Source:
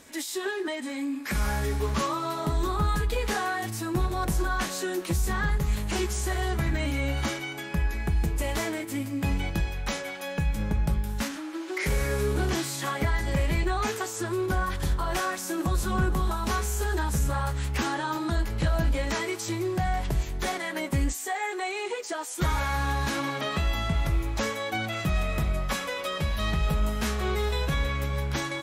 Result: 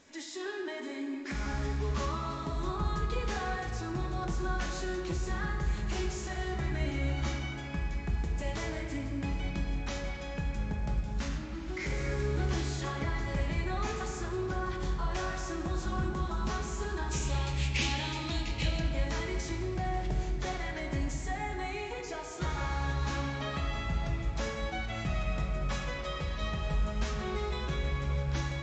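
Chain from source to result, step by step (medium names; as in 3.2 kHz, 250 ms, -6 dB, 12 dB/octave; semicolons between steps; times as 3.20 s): 17.11–18.80 s: resonant high shelf 1.9 kHz +8 dB, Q 3; simulated room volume 130 m³, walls hard, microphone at 0.31 m; trim -8.5 dB; µ-law 128 kbps 16 kHz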